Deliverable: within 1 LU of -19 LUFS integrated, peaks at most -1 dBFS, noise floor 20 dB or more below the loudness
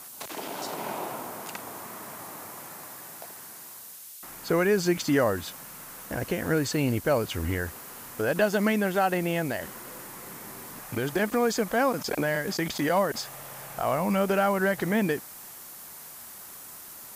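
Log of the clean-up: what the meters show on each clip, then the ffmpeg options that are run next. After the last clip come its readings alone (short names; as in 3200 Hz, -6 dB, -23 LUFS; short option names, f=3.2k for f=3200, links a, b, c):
noise floor -45 dBFS; noise floor target -48 dBFS; loudness -27.5 LUFS; peak -10.5 dBFS; loudness target -19.0 LUFS
-> -af "afftdn=nr=6:nf=-45"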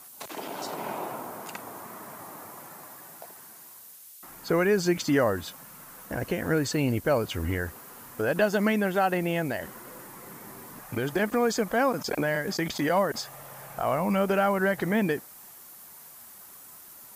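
noise floor -49 dBFS; loudness -27.5 LUFS; peak -11.0 dBFS; loudness target -19.0 LUFS
-> -af "volume=8.5dB"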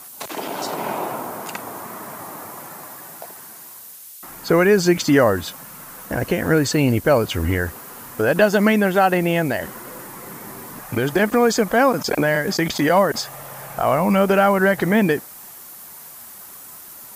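loudness -19.0 LUFS; peak -2.5 dBFS; noise floor -40 dBFS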